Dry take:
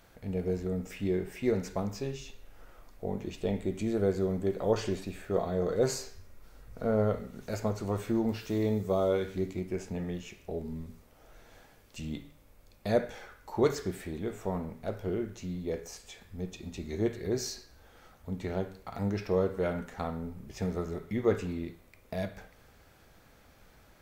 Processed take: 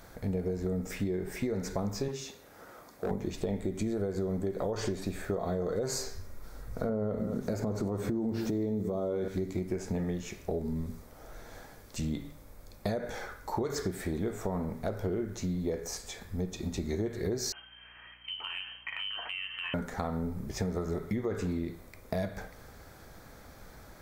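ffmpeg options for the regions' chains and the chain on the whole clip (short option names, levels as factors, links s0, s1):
-filter_complex "[0:a]asettb=1/sr,asplit=3[s0][s1][s2];[s0]atrim=end=2.084[s3];[s1]atrim=start=2.08:end=3.11,asetpts=PTS-STARTPTS,afade=t=in:d=0.004:c=qsin,afade=t=out:st=1.026:d=0.004:c=qsin,highpass=160,asoftclip=type=hard:threshold=0.0211[s4];[s2]atrim=start=3.106[s5];[s3][s4]acrossfade=d=0.004:c1=hsin:c2=qsin[s6];[s6][s5]acrossfade=d=0.004:c1=qsin:c2=hsin,asettb=1/sr,asplit=3[s7][s8][s9];[s7]atrim=end=6.894[s10];[s8]atrim=start=6.89:end=9.28,asetpts=PTS-STARTPTS,afade=t=in:d=0.004:c=qsin,afade=t=out:st=2.386:d=0.004:c=qsin,equalizer=f=260:w=0.45:g=10,aecho=1:1:218:0.126,atrim=end_sample=105399[s11];[s9]atrim=start=9.276[s12];[s10][s11]acrossfade=d=0.004:c1=hsin:c2=qsin[s13];[s13][s12]acrossfade=d=0.004:c1=qsin:c2=hsin,asettb=1/sr,asplit=3[s14][s15][s16];[s14]atrim=end=17.524[s17];[s15]atrim=start=17.52:end=19.74,asetpts=PTS-STARTPTS,afade=t=in:d=0.004:c=qsin,afade=t=out:st=2.216:d=0.004:c=qsin,lowpass=f=2700:t=q:w=0.5098,lowpass=f=2700:t=q:w=0.6013,lowpass=f=2700:t=q:w=0.9,lowpass=f=2700:t=q:w=2.563,afreqshift=-3200,acompressor=threshold=0.0178:ratio=4:attack=3.2:release=140:knee=1:detection=peak,aeval=exprs='val(0)+0.000224*(sin(2*PI*60*n/s)+sin(2*PI*2*60*n/s)/2+sin(2*PI*3*60*n/s)/3+sin(2*PI*4*60*n/s)/4+sin(2*PI*5*60*n/s)/5)':c=same[s18];[s16]atrim=start=19.736[s19];[s17][s18]acrossfade=d=0.004:c1=hsin:c2=qsin[s20];[s20][s19]acrossfade=d=0.004:c1=qsin:c2=hsin,equalizer=f=2800:t=o:w=0.47:g=-9.5,alimiter=limit=0.0631:level=0:latency=1:release=112,acompressor=threshold=0.0141:ratio=6,volume=2.51"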